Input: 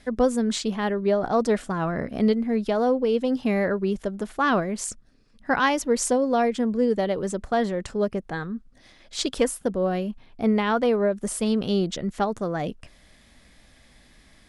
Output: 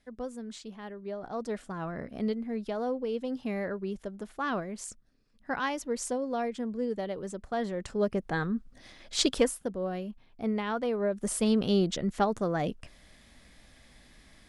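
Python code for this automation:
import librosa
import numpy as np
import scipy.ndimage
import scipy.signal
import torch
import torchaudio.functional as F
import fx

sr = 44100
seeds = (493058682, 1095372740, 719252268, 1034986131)

y = fx.gain(x, sr, db=fx.line((0.99, -17.0), (1.78, -10.0), (7.45, -10.0), (8.44, 1.0), (9.26, 1.0), (9.7, -9.0), (10.92, -9.0), (11.33, -2.0)))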